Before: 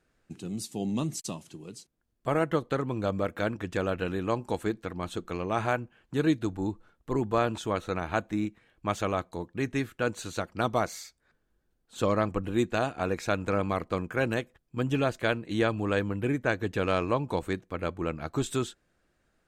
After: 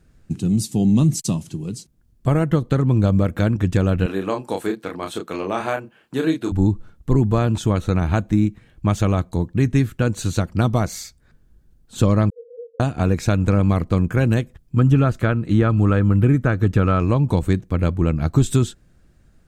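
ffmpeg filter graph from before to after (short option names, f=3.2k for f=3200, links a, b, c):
-filter_complex "[0:a]asettb=1/sr,asplit=3[a][b][c];[a]atrim=end=4.064[d];[b]atrim=start=4.06:end=6.52,asetpts=PTS-STARTPTS,afade=t=in:d=0.004:c=qsin,afade=t=out:st=2.456:d=0.004:c=qsin,highpass=390,equalizer=f=6.7k:w=2.3:g=-5,asplit=2[e][f];[f]adelay=31,volume=-4.5dB[g];[e][g]amix=inputs=2:normalize=0,atrim=end_sample=108486[h];[c]atrim=start=6.516[i];[d][h]acrossfade=d=0.004:c1=hsin:c2=qsin[j];[j][i]acrossfade=d=0.004:c1=qsin:c2=hsin,asettb=1/sr,asplit=3[k][l][m];[k]atrim=end=12.304[n];[l]atrim=start=12.3:end=12.8,asetpts=PTS-STARTPTS,afade=t=in:d=0.004:c=qsin,afade=t=out:st=0.496:d=0.004:c=qsin,aeval=exprs='abs(val(0))':c=same,asuperpass=centerf=480:order=12:qfactor=7.5[o];[m]atrim=start=12.796[p];[n][o]acrossfade=d=0.004:c1=hsin:c2=qsin[q];[q][p]acrossfade=d=0.004:c1=qsin:c2=hsin,asettb=1/sr,asplit=3[r][s][t];[r]atrim=end=14.764[u];[s]atrim=start=14.76:end=17,asetpts=PTS-STARTPTS,afade=t=in:d=0.004:c=qsin,afade=t=out:st=2.236:d=0.004:c=qsin,acrossover=split=2600[v][w];[w]acompressor=threshold=-48dB:ratio=4:attack=1:release=60[x];[v][x]amix=inputs=2:normalize=0,equalizer=f=1.3k:t=o:w=0.25:g=10[y];[t]atrim=start=16.996[z];[u][y]acrossfade=d=0.004:c1=hsin:c2=qsin[aa];[aa][z]acrossfade=d=0.004:c1=qsin:c2=hsin,lowshelf=f=400:g=3.5,acompressor=threshold=-27dB:ratio=2,bass=f=250:g=13,treble=f=4k:g=5,volume=5.5dB"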